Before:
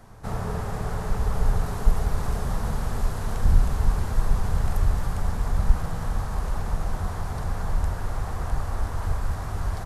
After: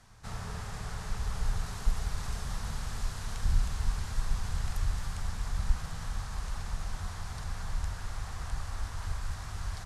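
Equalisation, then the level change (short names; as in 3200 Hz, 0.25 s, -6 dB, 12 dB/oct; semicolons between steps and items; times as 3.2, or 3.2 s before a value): air absorption 67 m; passive tone stack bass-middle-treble 5-5-5; high shelf 3600 Hz +7.5 dB; +5.0 dB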